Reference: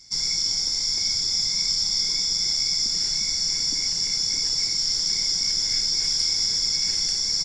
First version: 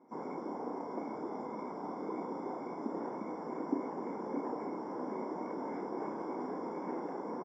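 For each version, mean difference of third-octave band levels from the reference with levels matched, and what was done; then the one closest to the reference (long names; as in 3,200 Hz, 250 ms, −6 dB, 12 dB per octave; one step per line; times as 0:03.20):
18.5 dB: elliptic band-pass filter 250–1,000 Hz, stop band 60 dB
double-tracking delay 32 ms −8 dB
level +12.5 dB
AAC 32 kbit/s 24,000 Hz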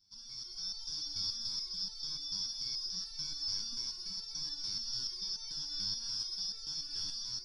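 6.0 dB: automatic gain control gain up to 10.5 dB
phaser with its sweep stopped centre 2,100 Hz, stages 6
step-sequenced resonator 6.9 Hz 98–450 Hz
level −7.5 dB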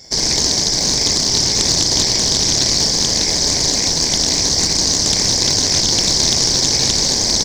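10.0 dB: high-pass filter 120 Hz
in parallel at −8.5 dB: sample-rate reduction 1,300 Hz, jitter 0%
on the sum: highs frequency-modulated by the lows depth 0.46 ms
level +8 dB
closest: second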